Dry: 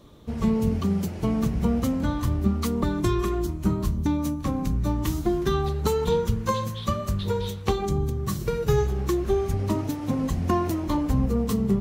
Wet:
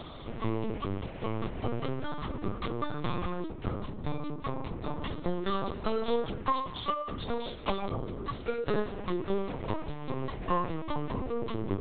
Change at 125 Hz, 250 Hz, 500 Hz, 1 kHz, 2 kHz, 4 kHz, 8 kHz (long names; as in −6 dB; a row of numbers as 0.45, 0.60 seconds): −11.5 dB, −11.0 dB, −7.0 dB, −3.0 dB, −3.0 dB, −4.5 dB, below −40 dB